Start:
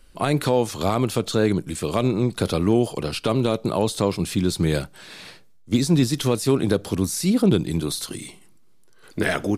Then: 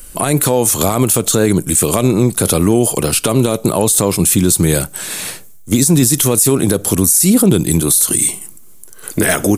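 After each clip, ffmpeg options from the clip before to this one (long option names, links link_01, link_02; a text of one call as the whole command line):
ffmpeg -i in.wav -filter_complex "[0:a]asplit=2[link_01][link_02];[link_02]acompressor=threshold=-29dB:ratio=6,volume=0dB[link_03];[link_01][link_03]amix=inputs=2:normalize=0,aexciter=amount=7.4:drive=3.1:freq=6500,alimiter=level_in=8.5dB:limit=-1dB:release=50:level=0:latency=1,volume=-1dB" out.wav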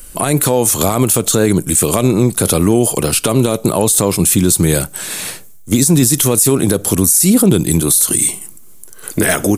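ffmpeg -i in.wav -af "dynaudnorm=framelen=180:gausssize=5:maxgain=3.5dB" out.wav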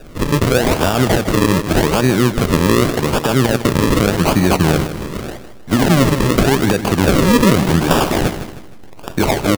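ffmpeg -i in.wav -filter_complex "[0:a]acrusher=samples=41:mix=1:aa=0.000001:lfo=1:lforange=41:lforate=0.85,asplit=2[link_01][link_02];[link_02]aecho=0:1:156|312|468|624:0.282|0.107|0.0407|0.0155[link_03];[link_01][link_03]amix=inputs=2:normalize=0,volume=-1.5dB" out.wav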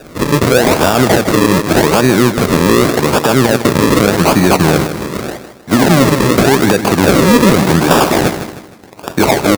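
ffmpeg -i in.wav -af "highpass=frequency=180:poles=1,equalizer=frequency=3000:width_type=o:width=0.22:gain=-5.5,aeval=exprs='1.12*sin(PI/2*1.78*val(0)/1.12)':channel_layout=same,volume=-2dB" out.wav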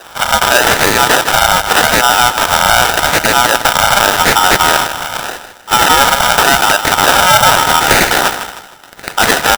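ffmpeg -i in.wav -af "aeval=exprs='val(0)*sgn(sin(2*PI*1100*n/s))':channel_layout=same" out.wav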